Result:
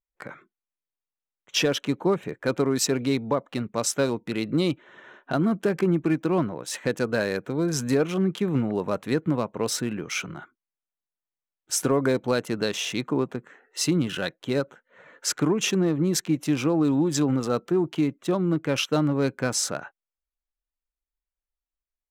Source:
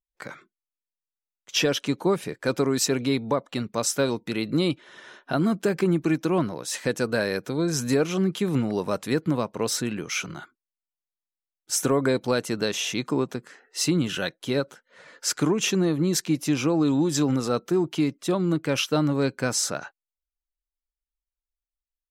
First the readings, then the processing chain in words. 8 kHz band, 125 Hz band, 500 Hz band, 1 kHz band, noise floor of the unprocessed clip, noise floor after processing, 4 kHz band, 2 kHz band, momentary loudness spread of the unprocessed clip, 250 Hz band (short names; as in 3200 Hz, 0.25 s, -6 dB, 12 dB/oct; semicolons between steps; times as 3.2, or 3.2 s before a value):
-1.0 dB, 0.0 dB, 0.0 dB, -0.5 dB, under -85 dBFS, under -85 dBFS, -1.5 dB, -1.0 dB, 6 LU, 0.0 dB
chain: Wiener smoothing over 9 samples